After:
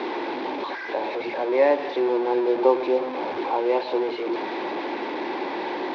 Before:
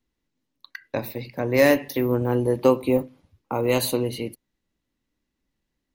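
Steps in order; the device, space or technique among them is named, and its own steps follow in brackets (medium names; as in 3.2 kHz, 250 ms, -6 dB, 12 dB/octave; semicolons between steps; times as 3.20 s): digital answering machine (band-pass 400–3000 Hz; one-bit delta coder 32 kbps, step -22 dBFS; cabinet simulation 350–3200 Hz, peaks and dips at 360 Hz +10 dB, 870 Hz +8 dB, 1.3 kHz -9 dB, 1.9 kHz -6 dB, 2.9 kHz -10 dB)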